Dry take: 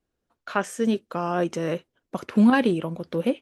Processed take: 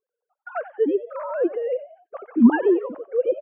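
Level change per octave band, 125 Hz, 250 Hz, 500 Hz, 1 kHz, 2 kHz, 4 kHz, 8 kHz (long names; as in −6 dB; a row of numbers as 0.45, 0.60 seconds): can't be measured, +1.0 dB, +5.0 dB, −4.0 dB, −3.0 dB, below −15 dB, below −40 dB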